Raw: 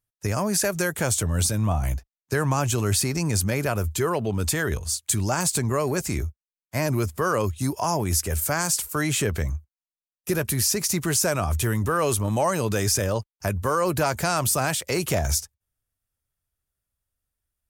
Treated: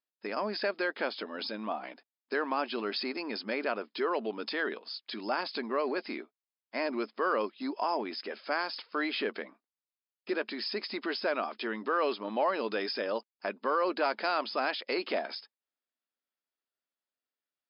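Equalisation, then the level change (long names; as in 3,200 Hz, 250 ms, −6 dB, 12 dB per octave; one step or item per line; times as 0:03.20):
linear-phase brick-wall band-pass 210–5,200 Hz
low-shelf EQ 370 Hz −3.5 dB
−4.5 dB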